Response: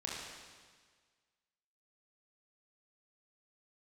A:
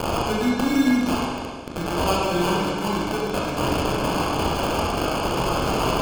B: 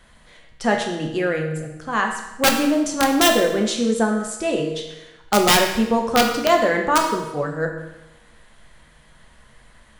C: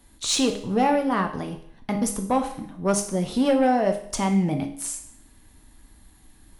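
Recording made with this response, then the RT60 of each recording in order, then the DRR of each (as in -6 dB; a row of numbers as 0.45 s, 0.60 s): A; 1.6 s, 1.0 s, 0.65 s; -4.5 dB, 1.5 dB, 4.5 dB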